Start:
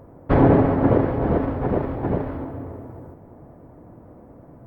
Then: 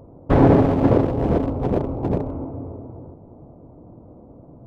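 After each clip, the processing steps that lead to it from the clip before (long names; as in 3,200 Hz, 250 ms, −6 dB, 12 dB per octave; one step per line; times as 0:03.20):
adaptive Wiener filter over 25 samples
level +1.5 dB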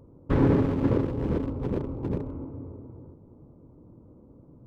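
parametric band 700 Hz −13.5 dB 0.49 octaves
level −6.5 dB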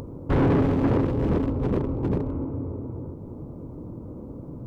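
in parallel at −2 dB: upward compression, threshold −27 dBFS
on the sum: soft clipping −17.5 dBFS, distortion −9 dB
level +1.5 dB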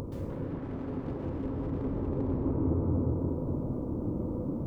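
compressor whose output falls as the input rises −31 dBFS, ratio −1
dense smooth reverb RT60 2.2 s, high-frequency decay 0.35×, pre-delay 115 ms, DRR −2.5 dB
level −6 dB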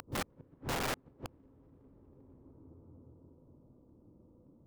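gate with flip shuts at −27 dBFS, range −34 dB
wrap-around overflow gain 35 dB
level +5.5 dB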